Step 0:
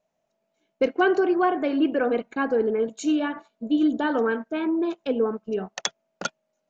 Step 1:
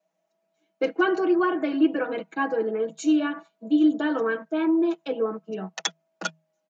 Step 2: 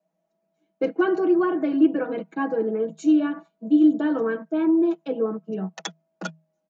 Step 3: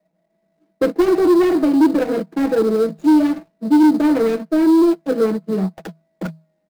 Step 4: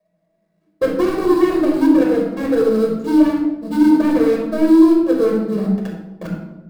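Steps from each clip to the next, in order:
Chebyshev high-pass filter 160 Hz, order 10; notch filter 480 Hz, Q 12; comb filter 6.2 ms, depth 93%; level −2.5 dB
drawn EQ curve 140 Hz 0 dB, 320 Hz −6 dB, 2,800 Hz −15 dB; level +8.5 dB
running median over 41 samples; in parallel at −10.5 dB: sample-rate reduction 4,500 Hz, jitter 20%; on the sum: soft clipping −16 dBFS, distortion −12 dB; level +8 dB
rectangular room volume 3,700 cubic metres, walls furnished, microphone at 5.6 metres; level −4.5 dB

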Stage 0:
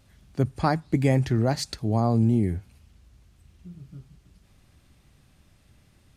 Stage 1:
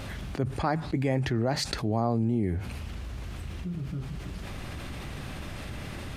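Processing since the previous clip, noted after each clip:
bass and treble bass −5 dB, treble −9 dB
envelope flattener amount 70%
level −4.5 dB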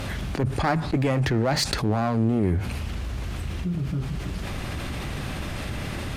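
asymmetric clip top −27 dBFS
level +7 dB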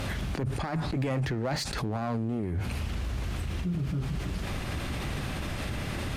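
brickwall limiter −22 dBFS, peak gain reduction 12 dB
level −1.5 dB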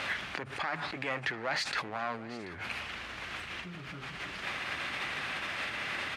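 resonant band-pass 2,000 Hz, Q 1.1
single-tap delay 735 ms −18 dB
level +6.5 dB

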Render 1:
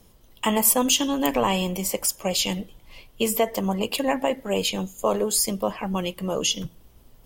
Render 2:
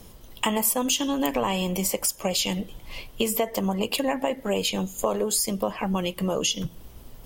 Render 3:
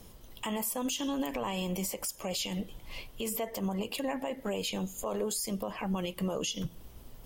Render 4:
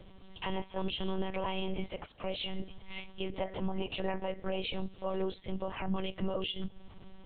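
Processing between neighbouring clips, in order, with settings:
downward compressor 3 to 1, threshold −33 dBFS, peak gain reduction 14 dB; level +8 dB
brickwall limiter −19 dBFS, peak gain reduction 9 dB; level −5 dB
one-pitch LPC vocoder at 8 kHz 190 Hz

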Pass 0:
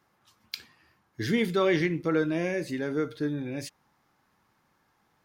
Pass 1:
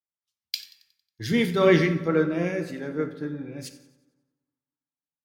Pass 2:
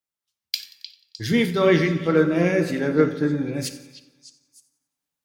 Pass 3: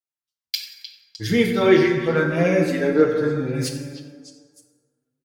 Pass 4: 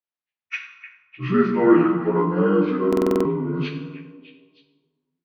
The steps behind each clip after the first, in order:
delay with a high-pass on its return 91 ms, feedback 73%, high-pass 3,000 Hz, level −16 dB; convolution reverb RT60 2.2 s, pre-delay 3 ms, DRR 7 dB; multiband upward and downward expander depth 100%
speech leveller within 5 dB 0.5 s; echo through a band-pass that steps 305 ms, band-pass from 3,500 Hz, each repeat 0.7 octaves, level −10.5 dB; level +5 dB
noise gate −54 dBFS, range −10 dB; dense smooth reverb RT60 1.8 s, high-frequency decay 0.4×, DRR 4 dB; barber-pole flanger 6.1 ms +0.61 Hz; level +3.5 dB
partials spread apart or drawn together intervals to 78%; high-frequency loss of the air 290 metres; buffer that repeats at 0:02.88, samples 2,048, times 7; level +1.5 dB

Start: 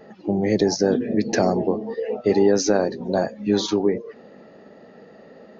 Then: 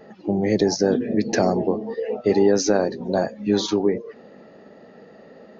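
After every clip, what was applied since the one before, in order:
no processing that can be heard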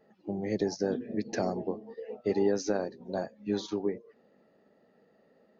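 expander for the loud parts 1.5 to 1, over −33 dBFS
level −9 dB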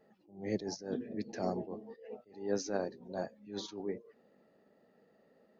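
level that may rise only so fast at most 130 dB per second
level −2.5 dB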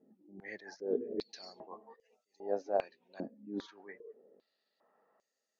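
band-pass on a step sequencer 2.5 Hz 270–6,500 Hz
level +9.5 dB

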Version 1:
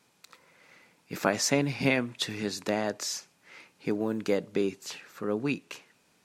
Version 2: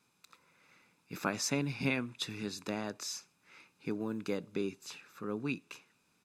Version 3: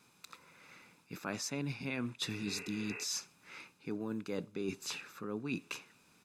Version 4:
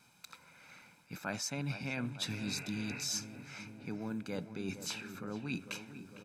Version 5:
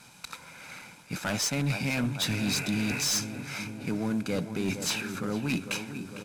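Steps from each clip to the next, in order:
comb filter 0.8 ms, depth 41%; level −7.5 dB
healed spectral selection 0:02.40–0:03.01, 400–2,800 Hz before; reversed playback; downward compressor 16 to 1, threshold −41 dBFS, peak gain reduction 16 dB; reversed playback; level +7 dB
comb filter 1.3 ms, depth 49%; on a send: feedback echo with a low-pass in the loop 454 ms, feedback 75%, low-pass 1,800 Hz, level −11 dB
variable-slope delta modulation 64 kbit/s; in parallel at −5 dB: sine wavefolder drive 10 dB, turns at −22 dBFS

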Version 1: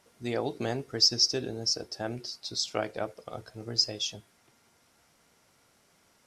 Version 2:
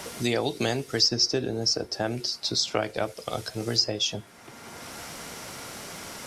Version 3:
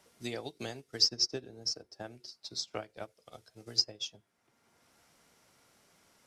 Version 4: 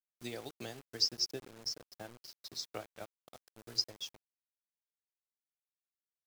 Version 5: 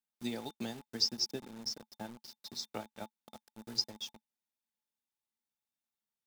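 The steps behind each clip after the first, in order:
multiband upward and downward compressor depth 70%; level +6 dB
expander for the loud parts 2.5 to 1, over −34 dBFS; level −2.5 dB
bit reduction 8 bits; level −4.5 dB
hollow resonant body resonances 220/860/3,600 Hz, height 13 dB, ringing for 65 ms

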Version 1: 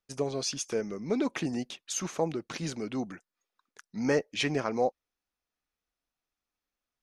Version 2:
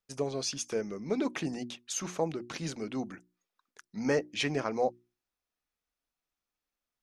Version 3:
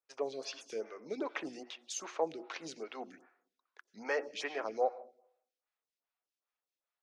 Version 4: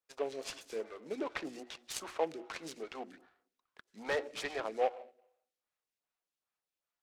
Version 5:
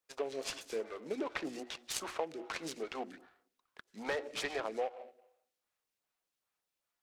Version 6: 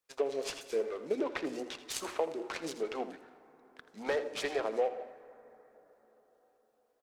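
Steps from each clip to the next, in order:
mains-hum notches 60/120/180/240/300/360 Hz; level −1.5 dB
three-way crossover with the lows and the highs turned down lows −23 dB, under 350 Hz, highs −15 dB, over 6,400 Hz; convolution reverb RT60 0.70 s, pre-delay 83 ms, DRR 15 dB; phaser with staggered stages 2.5 Hz
short delay modulated by noise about 1,600 Hz, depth 0.032 ms
downward compressor 6 to 1, threshold −36 dBFS, peak gain reduction 10.5 dB; level +3.5 dB
single-tap delay 82 ms −14 dB; dense smooth reverb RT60 4.9 s, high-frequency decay 0.3×, DRR 14.5 dB; dynamic equaliser 450 Hz, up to +6 dB, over −48 dBFS, Q 1.1

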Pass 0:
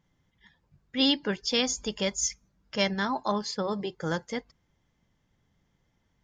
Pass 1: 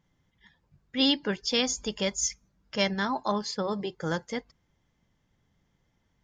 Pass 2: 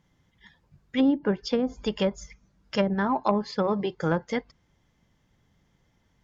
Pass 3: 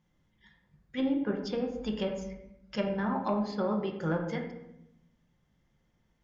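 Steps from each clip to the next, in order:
no processing that can be heard
treble cut that deepens with the level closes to 500 Hz, closed at −22 dBFS; harmonic generator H 3 −21 dB, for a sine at −14.5 dBFS; level +7.5 dB
convolution reverb RT60 0.85 s, pre-delay 5 ms, DRR 1.5 dB; level −8.5 dB

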